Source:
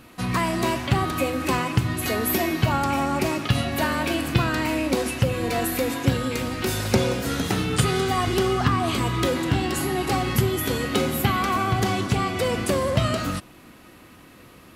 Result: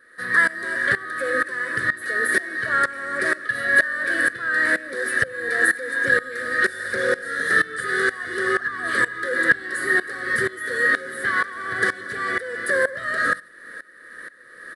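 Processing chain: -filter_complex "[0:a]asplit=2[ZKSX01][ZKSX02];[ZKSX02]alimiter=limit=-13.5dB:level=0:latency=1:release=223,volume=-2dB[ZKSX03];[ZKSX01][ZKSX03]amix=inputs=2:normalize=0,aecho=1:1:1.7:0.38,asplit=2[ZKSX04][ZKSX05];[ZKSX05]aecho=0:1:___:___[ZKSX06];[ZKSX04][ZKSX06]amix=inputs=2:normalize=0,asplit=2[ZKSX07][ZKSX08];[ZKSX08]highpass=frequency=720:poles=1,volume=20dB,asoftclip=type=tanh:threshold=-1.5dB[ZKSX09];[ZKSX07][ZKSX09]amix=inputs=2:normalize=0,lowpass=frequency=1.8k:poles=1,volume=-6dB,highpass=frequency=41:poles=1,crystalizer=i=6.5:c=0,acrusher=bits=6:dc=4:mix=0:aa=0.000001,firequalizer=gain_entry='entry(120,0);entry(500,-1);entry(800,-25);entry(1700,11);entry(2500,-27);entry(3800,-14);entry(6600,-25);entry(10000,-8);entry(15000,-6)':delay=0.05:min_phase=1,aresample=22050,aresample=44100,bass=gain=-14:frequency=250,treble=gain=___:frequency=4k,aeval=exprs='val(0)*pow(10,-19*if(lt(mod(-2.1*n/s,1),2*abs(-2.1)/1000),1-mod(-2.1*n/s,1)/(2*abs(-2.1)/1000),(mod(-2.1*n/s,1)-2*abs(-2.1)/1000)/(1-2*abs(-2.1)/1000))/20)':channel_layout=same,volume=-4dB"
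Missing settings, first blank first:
93, 0.106, 0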